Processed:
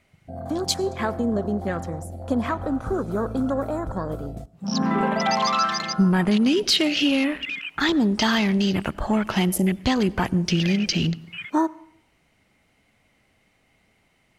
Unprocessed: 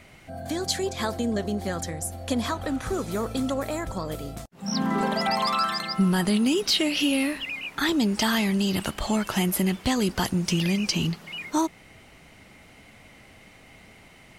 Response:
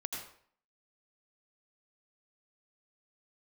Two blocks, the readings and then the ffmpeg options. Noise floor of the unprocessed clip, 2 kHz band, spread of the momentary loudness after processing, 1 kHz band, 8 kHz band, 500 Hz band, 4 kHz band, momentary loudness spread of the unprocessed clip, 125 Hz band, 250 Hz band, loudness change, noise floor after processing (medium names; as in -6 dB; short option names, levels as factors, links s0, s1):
-52 dBFS, +2.5 dB, 10 LU, +3.0 dB, -1.0 dB, +3.0 dB, +2.0 dB, 9 LU, +3.0 dB, +3.0 dB, +2.5 dB, -65 dBFS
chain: -filter_complex "[0:a]afwtdn=0.0178,asplit=2[s0][s1];[1:a]atrim=start_sample=2205,asetrate=39249,aresample=44100[s2];[s1][s2]afir=irnorm=-1:irlink=0,volume=0.0944[s3];[s0][s3]amix=inputs=2:normalize=0,volume=1.33"